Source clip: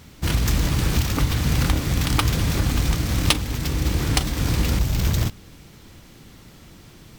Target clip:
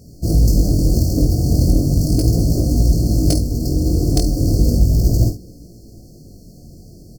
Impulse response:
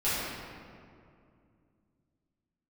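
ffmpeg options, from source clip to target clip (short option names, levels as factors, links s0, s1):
-filter_complex "[0:a]afftfilt=real='re*(1-between(b*sr/4096,750,4200))':imag='im*(1-between(b*sr/4096,750,4200))':win_size=4096:overlap=0.75,adynamicequalizer=threshold=0.00794:dfrequency=320:dqfactor=3.1:tfrequency=320:tqfactor=3.1:attack=5:release=100:ratio=0.375:range=2.5:mode=boostabove:tftype=bell,aecho=1:1:50|71:0.398|0.211,asplit=2[s0][s1];[s1]adynamicsmooth=sensitivity=1.5:basefreq=910,volume=0.708[s2];[s0][s2]amix=inputs=2:normalize=0,flanger=delay=17:depth=6.1:speed=0.36,volume=1.5"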